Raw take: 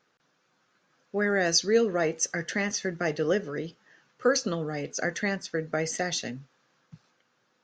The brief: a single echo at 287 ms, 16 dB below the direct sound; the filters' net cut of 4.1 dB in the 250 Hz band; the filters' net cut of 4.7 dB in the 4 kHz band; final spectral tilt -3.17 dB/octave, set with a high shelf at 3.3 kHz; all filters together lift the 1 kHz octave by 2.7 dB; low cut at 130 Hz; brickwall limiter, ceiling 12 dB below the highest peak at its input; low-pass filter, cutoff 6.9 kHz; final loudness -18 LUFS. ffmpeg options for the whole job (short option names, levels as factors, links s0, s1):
-af "highpass=130,lowpass=6900,equalizer=f=250:t=o:g=-5.5,equalizer=f=1000:t=o:g=5,highshelf=f=3300:g=3,equalizer=f=4000:t=o:g=-8,alimiter=limit=0.0708:level=0:latency=1,aecho=1:1:287:0.158,volume=6.31"